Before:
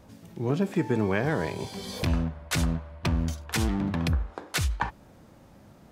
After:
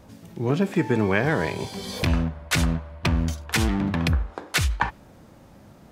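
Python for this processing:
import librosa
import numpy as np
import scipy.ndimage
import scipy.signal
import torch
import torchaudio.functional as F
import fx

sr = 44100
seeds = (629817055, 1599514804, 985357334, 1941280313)

y = fx.dynamic_eq(x, sr, hz=2200.0, q=0.84, threshold_db=-42.0, ratio=4.0, max_db=4)
y = y * librosa.db_to_amplitude(3.5)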